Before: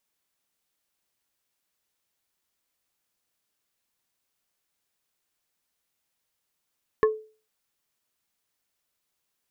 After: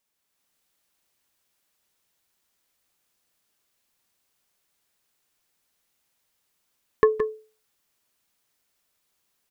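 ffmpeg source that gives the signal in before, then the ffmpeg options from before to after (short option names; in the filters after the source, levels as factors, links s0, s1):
-f lavfi -i "aevalsrc='0.2*pow(10,-3*t/0.37)*sin(2*PI*434*t)+0.112*pow(10,-3*t/0.123)*sin(2*PI*1085*t)+0.0631*pow(10,-3*t/0.07)*sin(2*PI*1736*t)':d=0.45:s=44100"
-af "aecho=1:1:166|171:0.126|0.355,dynaudnorm=f=140:g=5:m=1.78"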